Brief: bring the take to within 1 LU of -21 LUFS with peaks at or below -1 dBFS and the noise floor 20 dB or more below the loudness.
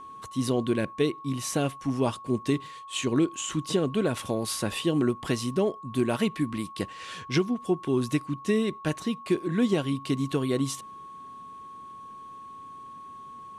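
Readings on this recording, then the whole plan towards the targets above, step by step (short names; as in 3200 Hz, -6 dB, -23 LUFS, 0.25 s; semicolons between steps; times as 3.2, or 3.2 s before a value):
steady tone 1100 Hz; tone level -41 dBFS; loudness -28.0 LUFS; peak -13.0 dBFS; loudness target -21.0 LUFS
-> notch 1100 Hz, Q 30; gain +7 dB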